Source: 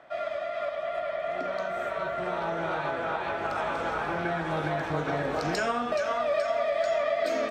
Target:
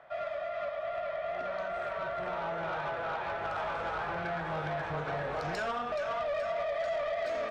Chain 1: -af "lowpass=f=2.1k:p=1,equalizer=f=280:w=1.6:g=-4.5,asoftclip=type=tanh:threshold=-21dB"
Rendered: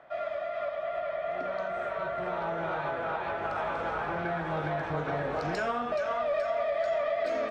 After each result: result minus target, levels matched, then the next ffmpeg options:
soft clip: distortion -8 dB; 250 Hz band +3.0 dB
-af "lowpass=f=2.1k:p=1,equalizer=f=280:w=1.6:g=-4.5,asoftclip=type=tanh:threshold=-28.5dB"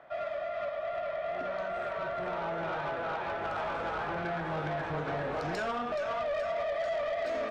250 Hz band +3.5 dB
-af "lowpass=f=2.1k:p=1,equalizer=f=280:w=1.6:g=-13,asoftclip=type=tanh:threshold=-28.5dB"

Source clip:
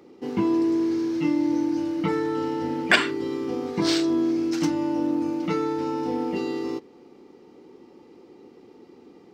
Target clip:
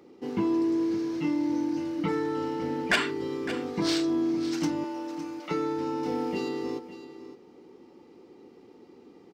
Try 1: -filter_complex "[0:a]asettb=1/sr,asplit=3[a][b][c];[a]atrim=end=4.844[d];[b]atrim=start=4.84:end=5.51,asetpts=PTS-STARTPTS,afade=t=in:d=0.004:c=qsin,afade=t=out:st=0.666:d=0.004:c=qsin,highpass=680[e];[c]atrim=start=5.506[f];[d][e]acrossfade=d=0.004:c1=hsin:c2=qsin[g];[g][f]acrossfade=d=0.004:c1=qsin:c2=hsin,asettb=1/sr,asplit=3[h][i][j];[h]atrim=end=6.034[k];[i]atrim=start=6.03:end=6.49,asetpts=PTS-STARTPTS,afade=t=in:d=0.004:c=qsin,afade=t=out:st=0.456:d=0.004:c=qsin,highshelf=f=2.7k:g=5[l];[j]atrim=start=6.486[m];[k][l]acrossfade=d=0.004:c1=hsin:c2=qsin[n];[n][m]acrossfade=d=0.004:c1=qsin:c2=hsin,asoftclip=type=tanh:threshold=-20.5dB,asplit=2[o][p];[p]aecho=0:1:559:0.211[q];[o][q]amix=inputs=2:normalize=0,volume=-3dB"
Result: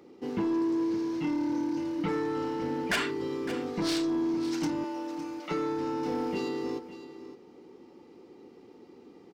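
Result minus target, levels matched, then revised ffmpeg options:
soft clip: distortion +7 dB
-filter_complex "[0:a]asettb=1/sr,asplit=3[a][b][c];[a]atrim=end=4.844[d];[b]atrim=start=4.84:end=5.51,asetpts=PTS-STARTPTS,afade=t=in:d=0.004:c=qsin,afade=t=out:st=0.666:d=0.004:c=qsin,highpass=680[e];[c]atrim=start=5.506[f];[d][e]acrossfade=d=0.004:c1=hsin:c2=qsin[g];[g][f]acrossfade=d=0.004:c1=qsin:c2=hsin,asettb=1/sr,asplit=3[h][i][j];[h]atrim=end=6.034[k];[i]atrim=start=6.03:end=6.49,asetpts=PTS-STARTPTS,afade=t=in:d=0.004:c=qsin,afade=t=out:st=0.456:d=0.004:c=qsin,highshelf=f=2.7k:g=5[l];[j]atrim=start=6.486[m];[k][l]acrossfade=d=0.004:c1=hsin:c2=qsin[n];[n][m]acrossfade=d=0.004:c1=qsin:c2=hsin,asoftclip=type=tanh:threshold=-12.5dB,asplit=2[o][p];[p]aecho=0:1:559:0.211[q];[o][q]amix=inputs=2:normalize=0,volume=-3dB"

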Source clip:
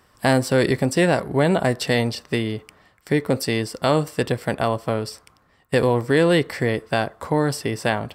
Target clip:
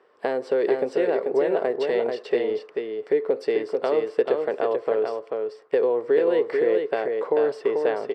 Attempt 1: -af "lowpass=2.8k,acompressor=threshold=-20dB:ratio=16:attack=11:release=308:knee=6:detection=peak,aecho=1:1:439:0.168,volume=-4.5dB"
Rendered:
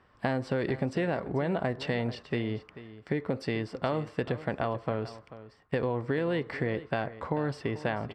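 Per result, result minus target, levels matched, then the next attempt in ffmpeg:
echo-to-direct -11 dB; 500 Hz band -3.5 dB
-af "lowpass=2.8k,acompressor=threshold=-20dB:ratio=16:attack=11:release=308:knee=6:detection=peak,aecho=1:1:439:0.596,volume=-4.5dB"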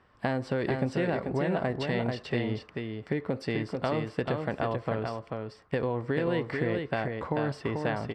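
500 Hz band -3.5 dB
-af "lowpass=2.8k,acompressor=threshold=-20dB:ratio=16:attack=11:release=308:knee=6:detection=peak,highpass=f=430:t=q:w=5.1,aecho=1:1:439:0.596,volume=-4.5dB"

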